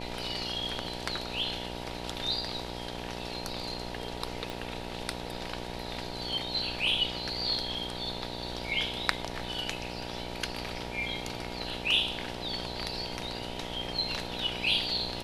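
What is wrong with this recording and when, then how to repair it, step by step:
mains buzz 60 Hz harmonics 16 −40 dBFS
0:04.50: click −22 dBFS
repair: click removal
hum removal 60 Hz, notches 16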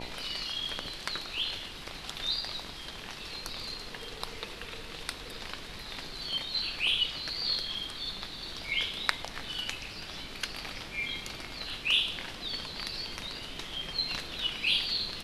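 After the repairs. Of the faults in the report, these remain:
0:04.50: click

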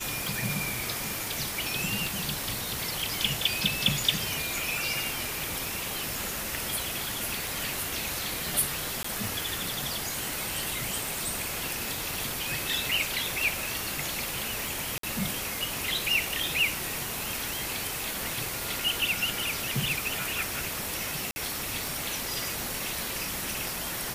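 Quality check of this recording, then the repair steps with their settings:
scratch tick 33 1/3 rpm
0:09.03–0:09.04: drop-out 14 ms
0:14.98–0:15.03: drop-out 53 ms
0:21.31–0:21.36: drop-out 50 ms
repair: click removal
repair the gap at 0:09.03, 14 ms
repair the gap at 0:14.98, 53 ms
repair the gap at 0:21.31, 50 ms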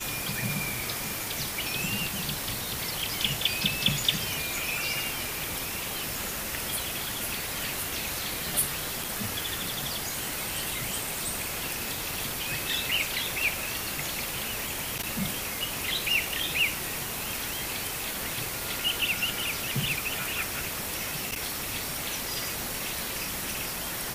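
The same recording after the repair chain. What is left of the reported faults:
none of them is left

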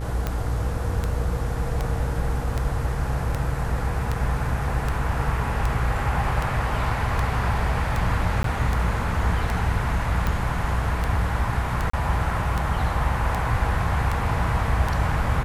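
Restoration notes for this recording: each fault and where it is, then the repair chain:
mains buzz 60 Hz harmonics 33 −28 dBFS
scratch tick 78 rpm −12 dBFS
0:08.43–0:08.44: drop-out 13 ms
0:11.90–0:11.93: drop-out 34 ms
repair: click removal
hum removal 60 Hz, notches 33
repair the gap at 0:08.43, 13 ms
repair the gap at 0:11.90, 34 ms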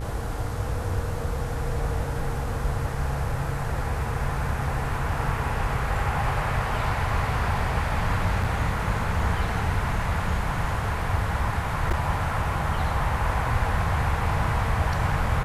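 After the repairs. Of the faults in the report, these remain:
none of them is left

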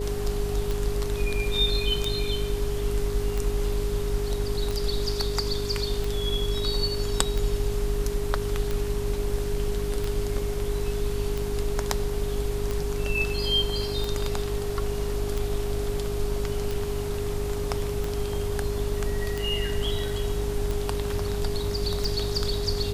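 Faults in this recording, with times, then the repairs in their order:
mains buzz 50 Hz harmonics 9 −31 dBFS
scratch tick 45 rpm
whistle 410 Hz −30 dBFS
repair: click removal
hum removal 50 Hz, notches 9
notch filter 410 Hz, Q 30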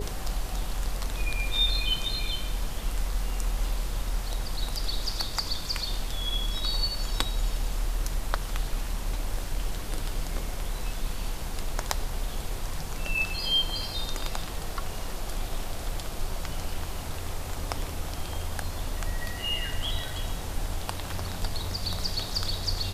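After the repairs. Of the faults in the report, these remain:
none of them is left

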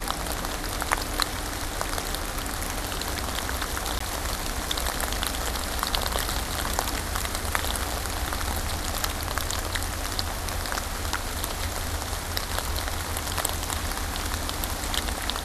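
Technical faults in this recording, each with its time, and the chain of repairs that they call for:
0:03.99–0:04.00: drop-out 14 ms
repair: repair the gap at 0:03.99, 14 ms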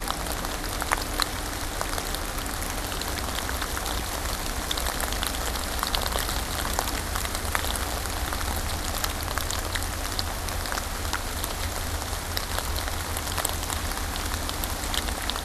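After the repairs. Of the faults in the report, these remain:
none of them is left

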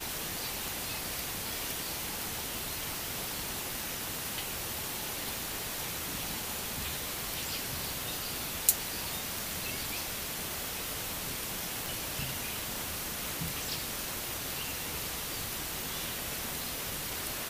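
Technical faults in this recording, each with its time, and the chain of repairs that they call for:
surface crackle 48 per second −43 dBFS
0:02.59: click
0:05.37: click
0:11.86: click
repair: click removal

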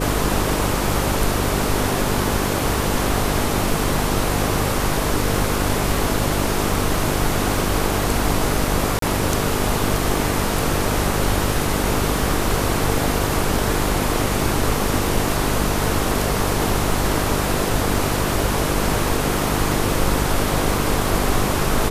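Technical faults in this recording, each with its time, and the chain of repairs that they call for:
mains buzz 50 Hz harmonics 9 −25 dBFS
0:08.99–0:09.02: drop-out 33 ms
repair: hum removal 50 Hz, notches 9
repair the gap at 0:08.99, 33 ms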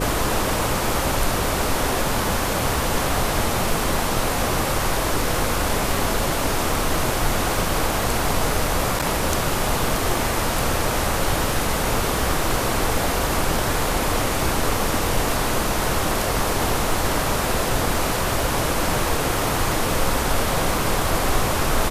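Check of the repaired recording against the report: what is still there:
none of them is left

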